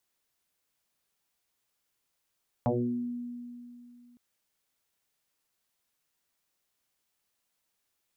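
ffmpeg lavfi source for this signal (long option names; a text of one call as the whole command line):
ffmpeg -f lavfi -i "aevalsrc='0.075*pow(10,-3*t/2.74)*sin(2*PI*242*t+5.7*pow(10,-3*t/0.61)*sin(2*PI*0.5*242*t))':duration=1.51:sample_rate=44100" out.wav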